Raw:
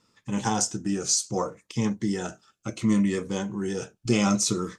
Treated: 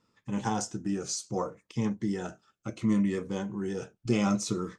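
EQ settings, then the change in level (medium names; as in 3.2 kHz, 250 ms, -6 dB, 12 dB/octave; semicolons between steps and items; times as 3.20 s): treble shelf 3.4 kHz -9 dB; -3.5 dB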